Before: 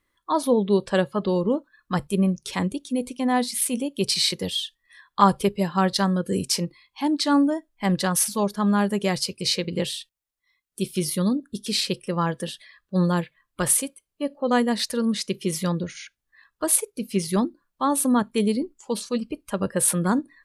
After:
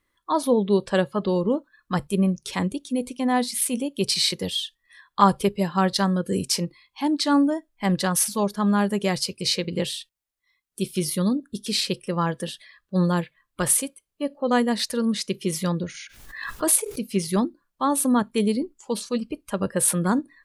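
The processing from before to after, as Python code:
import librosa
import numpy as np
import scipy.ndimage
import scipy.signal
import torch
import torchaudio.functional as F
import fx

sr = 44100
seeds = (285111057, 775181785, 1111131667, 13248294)

y = fx.pre_swell(x, sr, db_per_s=57.0, at=(15.94, 17.01))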